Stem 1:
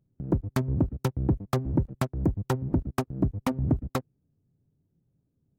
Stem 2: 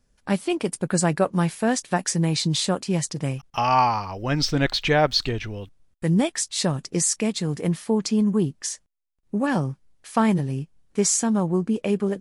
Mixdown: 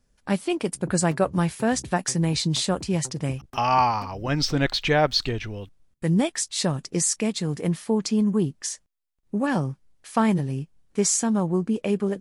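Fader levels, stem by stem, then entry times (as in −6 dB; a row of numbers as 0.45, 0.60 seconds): −16.0, −1.0 decibels; 0.55, 0.00 seconds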